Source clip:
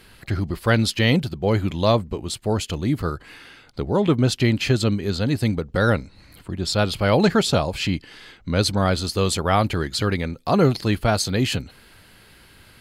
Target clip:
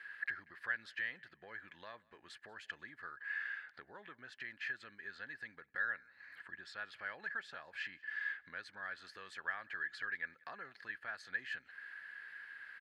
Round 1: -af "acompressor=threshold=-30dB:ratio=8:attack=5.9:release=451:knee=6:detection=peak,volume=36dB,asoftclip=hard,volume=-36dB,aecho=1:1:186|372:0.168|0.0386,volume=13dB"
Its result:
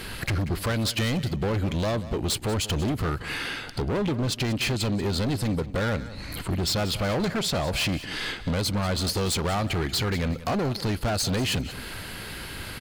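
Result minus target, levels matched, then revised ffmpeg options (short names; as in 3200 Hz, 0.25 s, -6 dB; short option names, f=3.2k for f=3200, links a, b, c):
2000 Hz band -11.0 dB; echo-to-direct +11 dB
-af "acompressor=threshold=-30dB:ratio=8:attack=5.9:release=451:knee=6:detection=peak,bandpass=f=1.7k:t=q:w=16:csg=0,volume=36dB,asoftclip=hard,volume=-36dB,aecho=1:1:186|372:0.0473|0.0109,volume=13dB"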